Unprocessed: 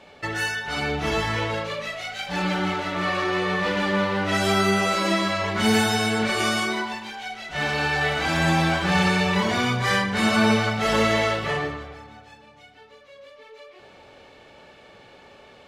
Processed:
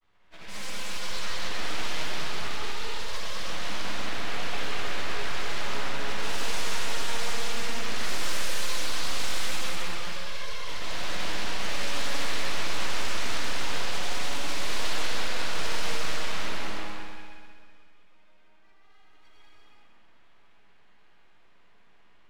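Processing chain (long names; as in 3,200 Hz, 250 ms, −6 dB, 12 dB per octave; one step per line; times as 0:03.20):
noise reduction from a noise print of the clip's start 13 dB
mid-hump overdrive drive 15 dB, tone 5,800 Hz, clips at −8 dBFS
first-order pre-emphasis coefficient 0.8
downward compressor 2.5 to 1, threshold −35 dBFS, peak gain reduction 8 dB
low-pass that shuts in the quiet parts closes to 2,000 Hz, open at −28.5 dBFS
change of speed 0.703×
granular cloud
full-wave rectification
echo machine with several playback heads 64 ms, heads second and third, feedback 55%, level −8.5 dB
reverb whose tail is shaped and stops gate 400 ms flat, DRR −6 dB
highs frequency-modulated by the lows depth 0.55 ms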